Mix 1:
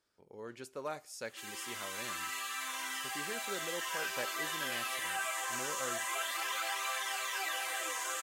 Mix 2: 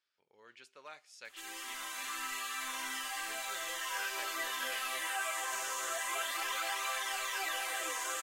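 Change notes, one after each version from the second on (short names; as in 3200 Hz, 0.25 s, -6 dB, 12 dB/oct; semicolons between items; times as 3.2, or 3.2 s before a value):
speech: add band-pass 2800 Hz, Q 1.2; master: remove HPF 220 Hz 6 dB/oct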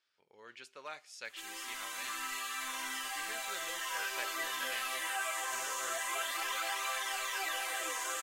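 speech +5.0 dB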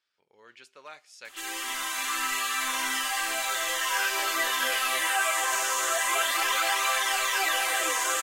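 background +10.5 dB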